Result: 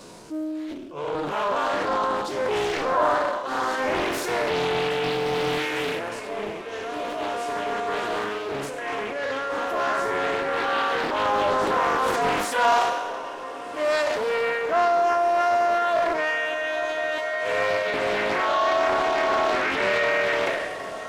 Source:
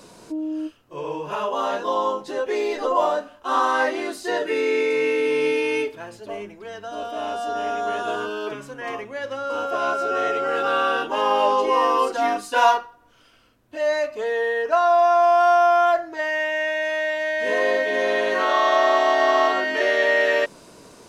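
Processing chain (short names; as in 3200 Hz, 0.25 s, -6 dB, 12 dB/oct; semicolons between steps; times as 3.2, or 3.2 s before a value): spectral trails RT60 2.03 s; reverb removal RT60 1.1 s; 3.47–3.93 bell 1500 Hz -6.5 dB 2.4 oct; 17.18–17.94 HPF 440 Hz 24 dB/oct; in parallel at +2.5 dB: limiter -16.5 dBFS, peak gain reduction 11.5 dB; on the sum: transient shaper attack -4 dB, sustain +8 dB; on a send: diffused feedback echo 1.608 s, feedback 65%, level -14 dB; on the sum: Doppler distortion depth 0.56 ms; gain -7 dB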